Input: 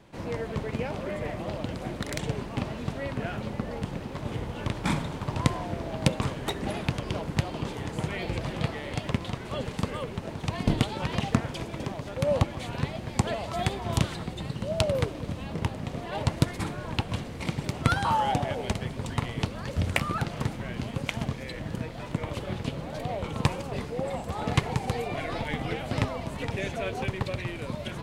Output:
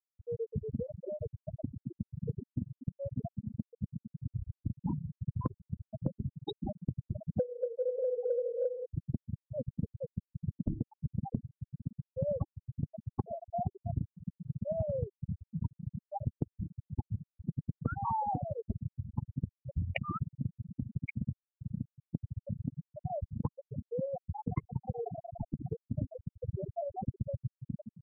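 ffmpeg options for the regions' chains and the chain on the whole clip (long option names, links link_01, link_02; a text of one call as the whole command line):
ffmpeg -i in.wav -filter_complex "[0:a]asettb=1/sr,asplit=3[link_01][link_02][link_03];[link_01]atrim=end=7.394[link_04];[link_02]atrim=start=7.39:end=8.86,asetpts=PTS-STARTPTS,afade=type=in:duration=0.004:curve=qsin,afade=type=out:start_time=1.466:duration=0.004:curve=qsin,lowshelf=frequency=110:width_type=q:width=3:gain=11,afreqshift=420[link_05];[link_03]atrim=start=8.856[link_06];[link_04][link_05]acrossfade=duration=0.004:curve1=hsin:curve2=qsin[link_07];[link_07][link_06]acrossfade=duration=0.004:curve1=qsin:curve2=hsin,equalizer=frequency=1500:width=3.2:gain=-5,afftfilt=real='re*gte(hypot(re,im),0.178)':imag='im*gte(hypot(re,im),0.178)':win_size=1024:overlap=0.75,acompressor=threshold=-30dB:ratio=6" out.wav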